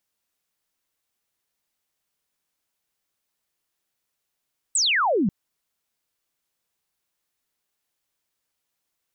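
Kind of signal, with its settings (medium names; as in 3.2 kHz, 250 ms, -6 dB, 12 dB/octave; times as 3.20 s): laser zap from 8.6 kHz, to 170 Hz, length 0.54 s sine, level -18 dB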